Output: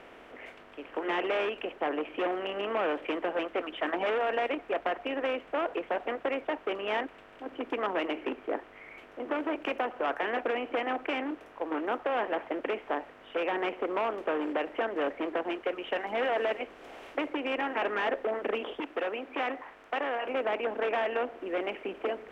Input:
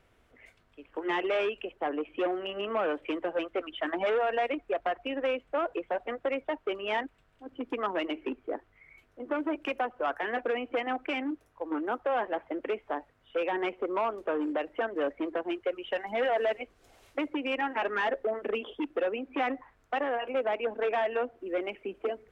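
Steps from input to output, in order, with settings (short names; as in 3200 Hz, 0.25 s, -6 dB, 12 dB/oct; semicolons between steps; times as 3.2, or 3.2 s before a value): per-bin compression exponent 0.6; 18.8–20.26 low shelf 410 Hz -6 dB; gain -4 dB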